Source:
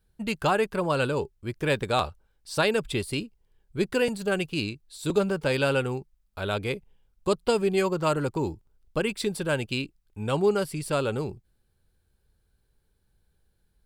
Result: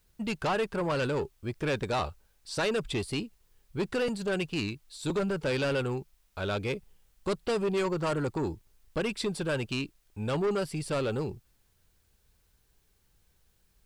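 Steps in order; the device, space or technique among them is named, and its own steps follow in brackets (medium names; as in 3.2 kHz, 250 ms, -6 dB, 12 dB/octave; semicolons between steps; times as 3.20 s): compact cassette (saturation -24 dBFS, distortion -10 dB; low-pass 8.3 kHz 12 dB/octave; wow and flutter 22 cents; white noise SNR 41 dB)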